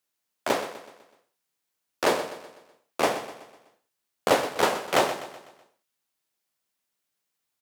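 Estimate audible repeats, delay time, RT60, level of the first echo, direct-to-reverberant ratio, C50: 4, 0.125 s, none, -12.5 dB, none, none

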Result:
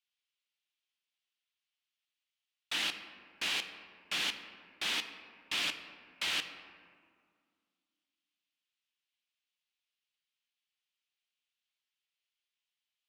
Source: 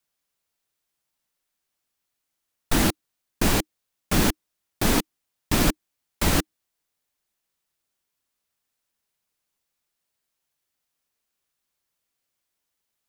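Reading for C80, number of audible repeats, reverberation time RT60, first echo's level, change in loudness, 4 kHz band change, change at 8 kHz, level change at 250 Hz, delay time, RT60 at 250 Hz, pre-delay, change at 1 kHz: 11.0 dB, none, 2.0 s, none, -10.5 dB, -2.5 dB, -14.5 dB, -27.5 dB, none, 2.8 s, 4 ms, -15.5 dB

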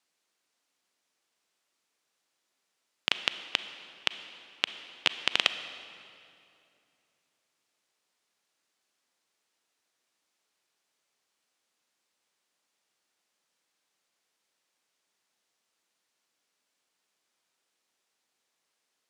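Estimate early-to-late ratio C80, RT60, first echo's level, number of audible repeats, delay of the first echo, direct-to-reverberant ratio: 12.0 dB, 2.6 s, none, none, none, 10.5 dB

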